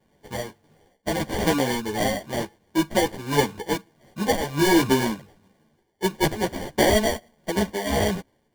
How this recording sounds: tremolo triangle 1.5 Hz, depth 60%; aliases and images of a low sample rate 1300 Hz, jitter 0%; a shimmering, thickened sound

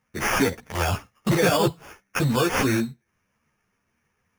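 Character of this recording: aliases and images of a low sample rate 4000 Hz, jitter 0%; a shimmering, thickened sound

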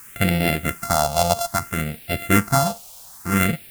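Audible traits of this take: a buzz of ramps at a fixed pitch in blocks of 64 samples; tremolo triangle 1.8 Hz, depth 40%; a quantiser's noise floor 8-bit, dither triangular; phasing stages 4, 0.61 Hz, lowest notch 300–1100 Hz

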